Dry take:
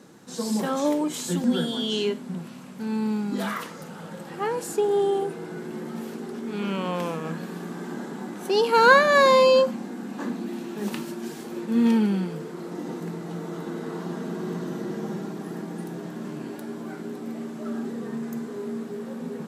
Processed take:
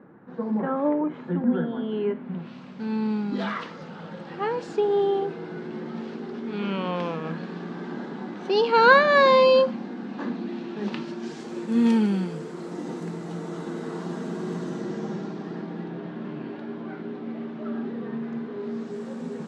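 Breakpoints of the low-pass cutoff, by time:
low-pass 24 dB/octave
2.06 s 1.8 kHz
2.56 s 4.6 kHz
10.98 s 4.6 kHz
11.71 s 9.1 kHz
14.59 s 9.1 kHz
15.92 s 3.6 kHz
18.55 s 3.6 kHz
18.97 s 8.2 kHz

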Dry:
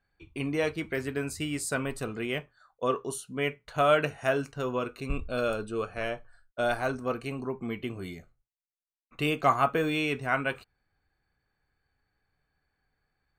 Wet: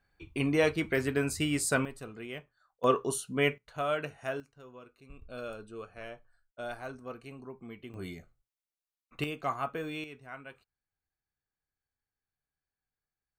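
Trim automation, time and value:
+2.5 dB
from 1.85 s -9.5 dB
from 2.84 s +2.5 dB
from 3.58 s -8.5 dB
from 4.40 s -20 dB
from 5.22 s -11.5 dB
from 7.94 s -2 dB
from 9.24 s -9.5 dB
from 10.04 s -17.5 dB

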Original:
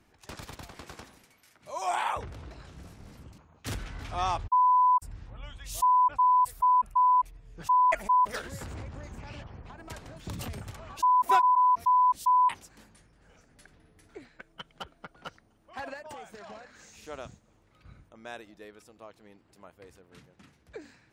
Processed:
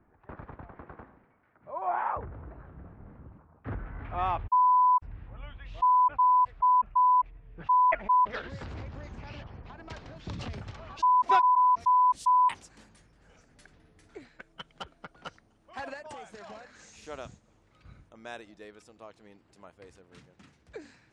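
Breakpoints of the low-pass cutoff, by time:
low-pass 24 dB/octave
3.86 s 1.6 kHz
4.26 s 2.7 kHz
7.96 s 2.7 kHz
8.79 s 5.4 kHz
11.53 s 5.4 kHz
12.06 s 9.2 kHz

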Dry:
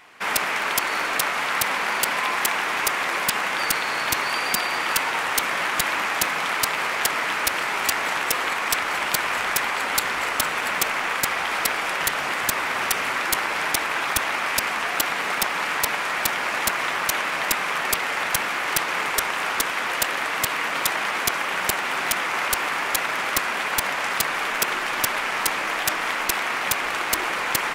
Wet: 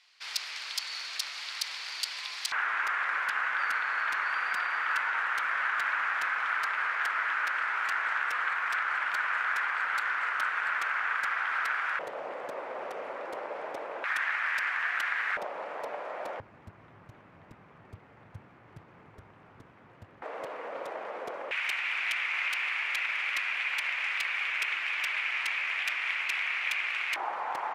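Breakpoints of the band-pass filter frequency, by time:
band-pass filter, Q 3.4
4.5 kHz
from 2.52 s 1.5 kHz
from 11.99 s 540 Hz
from 14.04 s 1.7 kHz
from 15.37 s 570 Hz
from 16.40 s 100 Hz
from 20.22 s 530 Hz
from 21.51 s 2.4 kHz
from 27.16 s 820 Hz

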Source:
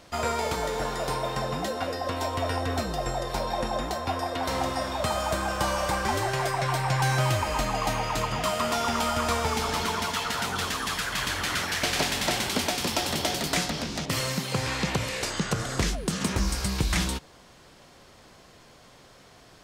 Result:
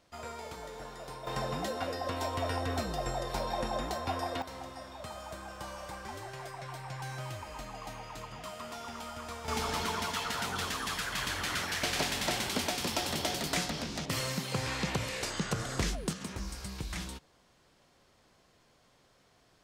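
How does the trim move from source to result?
-15 dB
from 1.27 s -5 dB
from 4.42 s -16 dB
from 9.48 s -5.5 dB
from 16.13 s -13 dB

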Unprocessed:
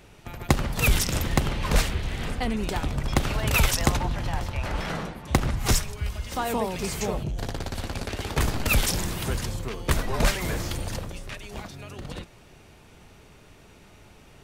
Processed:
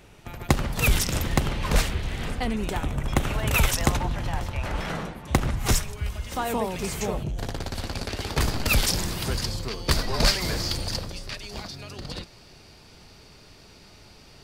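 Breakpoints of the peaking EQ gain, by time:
peaking EQ 4.7 kHz 0.46 oct
2.51 s 0 dB
2.89 s -11 dB
3.84 s -2 dB
7.32 s -2 dB
7.91 s +6.5 dB
9.12 s +6.5 dB
9.61 s +15 dB

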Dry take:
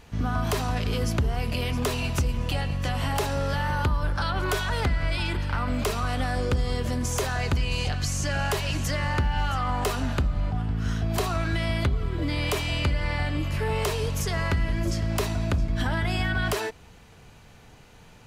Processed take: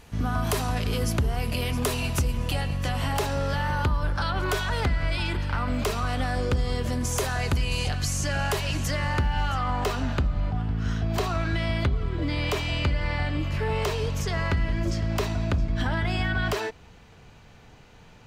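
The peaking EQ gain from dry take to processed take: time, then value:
peaking EQ 11 kHz 0.84 oct
2.60 s +6 dB
3.32 s -2.5 dB
6.67 s -2.5 dB
7.67 s +8 dB
8.51 s 0 dB
9.31 s 0 dB
9.88 s -11 dB

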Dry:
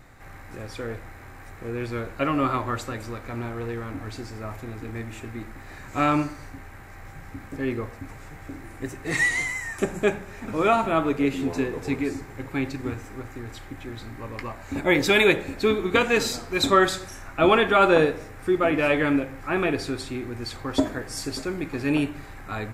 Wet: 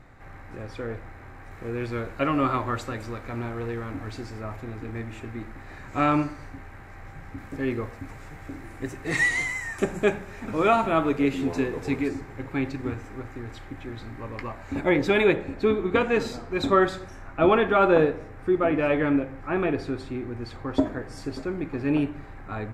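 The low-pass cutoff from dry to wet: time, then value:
low-pass 6 dB/octave
2.2 kHz
from 1.51 s 5.1 kHz
from 4.41 s 3.1 kHz
from 7.38 s 6.5 kHz
from 12.08 s 3.1 kHz
from 14.89 s 1.3 kHz

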